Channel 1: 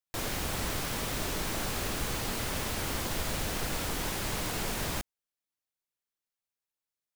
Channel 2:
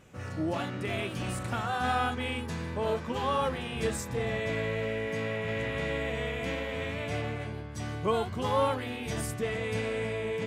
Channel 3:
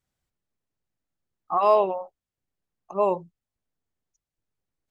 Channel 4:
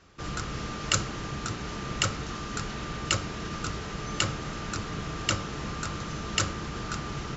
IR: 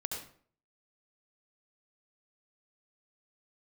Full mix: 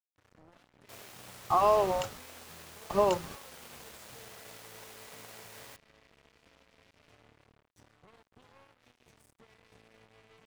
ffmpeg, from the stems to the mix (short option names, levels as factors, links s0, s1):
-filter_complex "[0:a]highpass=f=400:w=0.5412,highpass=f=400:w=1.3066,adelay=750,volume=0.299[s0];[1:a]alimiter=level_in=1.5:limit=0.0631:level=0:latency=1:release=179,volume=0.668,volume=0.188[s1];[2:a]acompressor=threshold=0.0562:ratio=3,volume=1.33,asplit=2[s2][s3];[3:a]acompressor=threshold=0.0158:ratio=6,volume=0.794[s4];[s3]apad=whole_len=324928[s5];[s4][s5]sidechaingate=range=0.0224:threshold=0.00355:ratio=16:detection=peak[s6];[s0][s1][s2][s6]amix=inputs=4:normalize=0,aeval=exprs='sgn(val(0))*max(abs(val(0))-0.00355,0)':c=same"